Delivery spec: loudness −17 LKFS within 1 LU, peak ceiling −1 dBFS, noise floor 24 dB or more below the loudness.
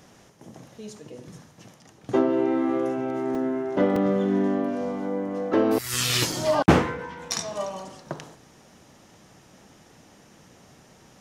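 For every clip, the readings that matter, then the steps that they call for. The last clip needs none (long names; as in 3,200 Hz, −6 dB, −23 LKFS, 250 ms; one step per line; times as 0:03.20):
number of dropouts 3; longest dropout 3.4 ms; integrated loudness −24.5 LKFS; sample peak −7.0 dBFS; target loudness −17.0 LKFS
→ repair the gap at 0:03.35/0:03.96/0:06.32, 3.4 ms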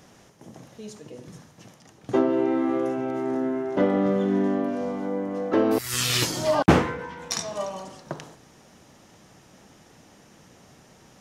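number of dropouts 0; integrated loudness −24.5 LKFS; sample peak −7.0 dBFS; target loudness −17.0 LKFS
→ level +7.5 dB
brickwall limiter −1 dBFS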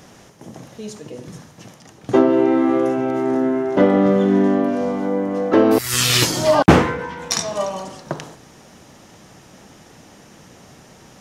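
integrated loudness −17.0 LKFS; sample peak −1.0 dBFS; background noise floor −47 dBFS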